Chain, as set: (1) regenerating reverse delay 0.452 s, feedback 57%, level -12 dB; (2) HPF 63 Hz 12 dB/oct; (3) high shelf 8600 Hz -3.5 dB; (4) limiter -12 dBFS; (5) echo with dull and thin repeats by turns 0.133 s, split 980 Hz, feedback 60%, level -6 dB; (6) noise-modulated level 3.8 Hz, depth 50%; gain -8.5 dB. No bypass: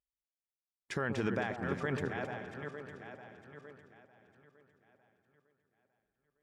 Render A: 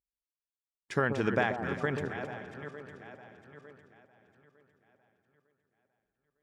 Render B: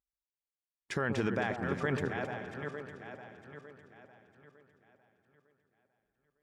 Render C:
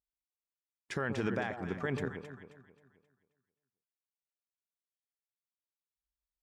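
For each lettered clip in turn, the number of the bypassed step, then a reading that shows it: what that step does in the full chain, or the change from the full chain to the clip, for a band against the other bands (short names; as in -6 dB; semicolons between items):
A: 4, crest factor change +4.0 dB; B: 6, loudness change +2.0 LU; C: 1, momentary loudness spread change -5 LU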